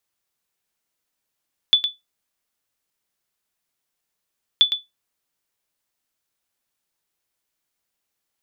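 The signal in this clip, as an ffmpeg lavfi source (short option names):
-f lavfi -i "aevalsrc='0.531*(sin(2*PI*3470*mod(t,2.88))*exp(-6.91*mod(t,2.88)/0.18)+0.376*sin(2*PI*3470*max(mod(t,2.88)-0.11,0))*exp(-6.91*max(mod(t,2.88)-0.11,0)/0.18))':d=5.76:s=44100"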